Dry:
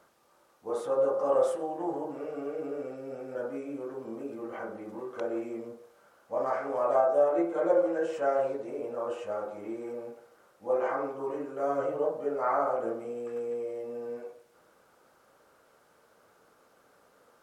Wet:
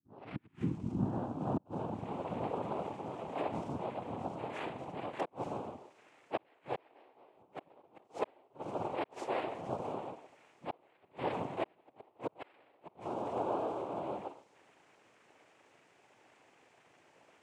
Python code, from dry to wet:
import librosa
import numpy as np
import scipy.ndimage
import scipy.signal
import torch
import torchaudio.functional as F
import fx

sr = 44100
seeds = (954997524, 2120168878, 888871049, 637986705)

y = fx.tape_start_head(x, sr, length_s=2.94)
y = fx.gate_flip(y, sr, shuts_db=-22.0, range_db=-36)
y = fx.noise_vocoder(y, sr, seeds[0], bands=4)
y = F.gain(torch.from_numpy(y), -1.5).numpy()